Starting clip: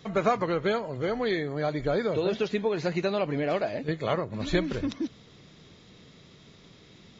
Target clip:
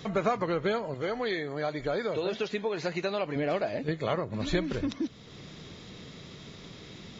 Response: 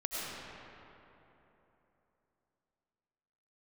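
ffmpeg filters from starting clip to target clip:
-filter_complex "[0:a]asettb=1/sr,asplit=3[a][b][c];[a]atrim=end=0.944[d];[b]atrim=start=0.94:end=3.36,asetpts=PTS-STARTPTS,afade=t=in:d=0.004:c=qsin,afade=t=out:st=2.416:d=0.004:c=qsin,lowshelf=f=340:g=-8[e];[c]atrim=start=3.356[f];[d][e]acrossfade=d=0.004:c1=hsin:c2=qsin[g];[g][f]acrossfade=d=0.004:c1=qsin:c2=hsin,acompressor=threshold=-50dB:ratio=1.5,volume=7.5dB"

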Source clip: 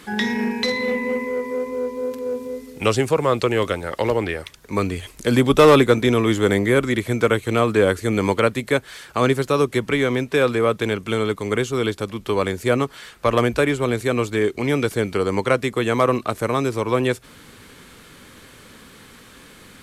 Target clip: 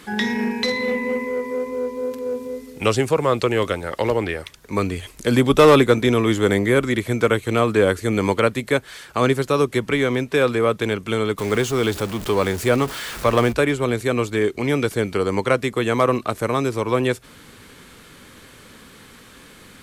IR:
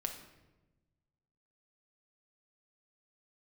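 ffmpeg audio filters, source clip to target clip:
-filter_complex "[0:a]asettb=1/sr,asplit=3[a][b][c];[a]atrim=end=11.384[d];[b]atrim=start=11.38:end=13.53,asetpts=PTS-STARTPTS,afade=t=in:d=0.004:c=qsin,afade=t=out:st=2.146:d=0.004:c=qsin,aeval=exprs='val(0)+0.5*0.0422*sgn(val(0))':c=same[e];[c]atrim=start=13.526[f];[d][e]acrossfade=d=0.004:c1=hsin:c2=qsin[g];[g][f]acrossfade=d=0.004:c1=qsin:c2=hsin"

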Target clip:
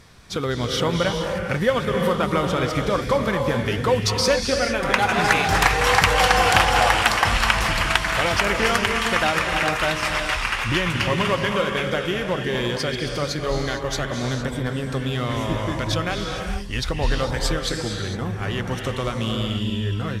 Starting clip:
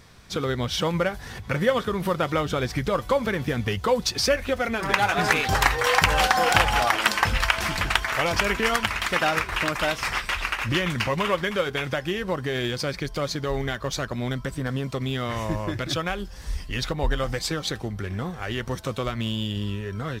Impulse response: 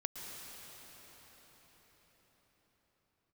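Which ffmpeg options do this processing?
-filter_complex "[1:a]atrim=start_sample=2205,afade=t=out:st=0.3:d=0.01,atrim=end_sample=13671,asetrate=23814,aresample=44100[a];[0:a][a]afir=irnorm=-1:irlink=0,volume=1dB"

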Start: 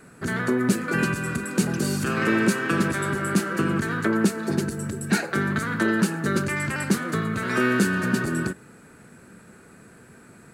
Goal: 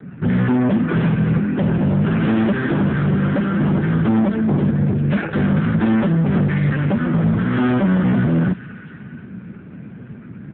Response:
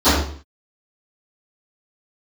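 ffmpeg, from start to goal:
-filter_complex "[0:a]acrossover=split=220|1200[a][b][c];[a]aeval=exprs='0.188*sin(PI/2*3.16*val(0)/0.188)':c=same[d];[c]aecho=1:1:62|297|727:0.501|0.1|0.178[e];[d][b][e]amix=inputs=3:normalize=0,acontrast=74,aresample=8000,asoftclip=type=hard:threshold=-14dB,aresample=44100,adynamicequalizer=threshold=0.0178:dfrequency=2500:dqfactor=1.5:tfrequency=2500:tqfactor=1.5:attack=5:release=100:ratio=0.375:range=2:mode=cutabove:tftype=bell" -ar 8000 -c:a libopencore_amrnb -b:a 5900

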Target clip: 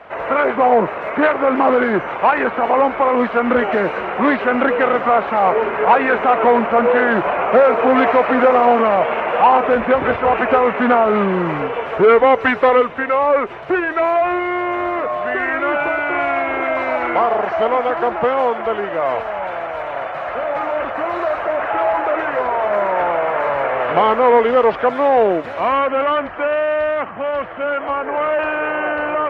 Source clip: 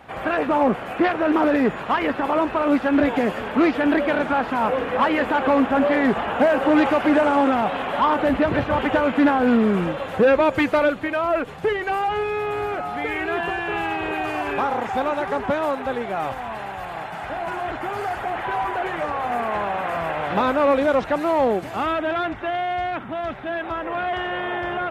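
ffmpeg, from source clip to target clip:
-filter_complex "[0:a]acrossover=split=460 4400:gain=0.224 1 0.0794[a][b][c];[a][b][c]amix=inputs=3:normalize=0,asetrate=37485,aresample=44100,volume=8dB"

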